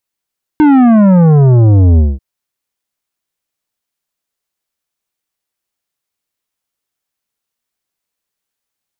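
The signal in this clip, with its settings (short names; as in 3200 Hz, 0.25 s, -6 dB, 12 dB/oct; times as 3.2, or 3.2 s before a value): sub drop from 310 Hz, over 1.59 s, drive 11 dB, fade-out 0.21 s, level -5 dB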